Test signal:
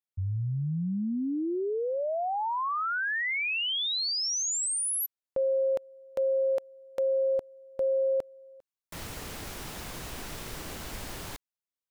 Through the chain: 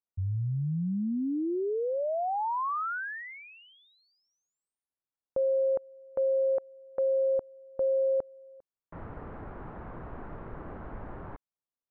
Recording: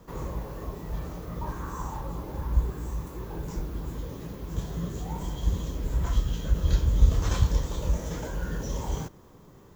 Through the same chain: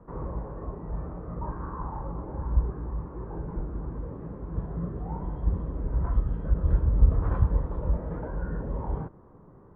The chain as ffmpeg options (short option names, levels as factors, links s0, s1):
-af "lowpass=f=1400:w=0.5412,lowpass=f=1400:w=1.3066"